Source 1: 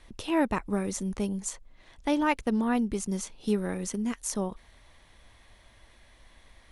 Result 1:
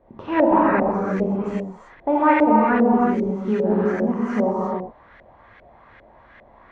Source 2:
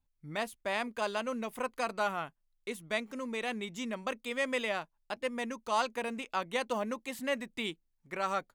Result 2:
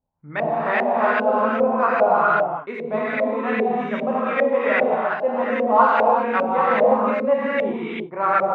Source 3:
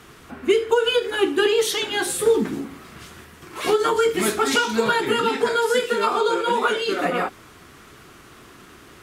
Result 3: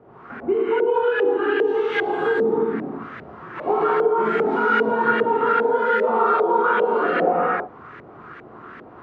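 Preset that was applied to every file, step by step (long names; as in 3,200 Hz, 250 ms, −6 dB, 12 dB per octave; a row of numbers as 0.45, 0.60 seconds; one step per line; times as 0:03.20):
low-pass filter 7,000 Hz 12 dB per octave
reverb whose tail is shaped and stops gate 400 ms flat, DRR −6.5 dB
downward compressor, threshold −15 dBFS
auto-filter low-pass saw up 2.5 Hz 570–1,900 Hz
high-pass filter 150 Hz 6 dB per octave
loudness normalisation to −20 LKFS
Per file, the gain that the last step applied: +3.0, +6.0, −3.0 decibels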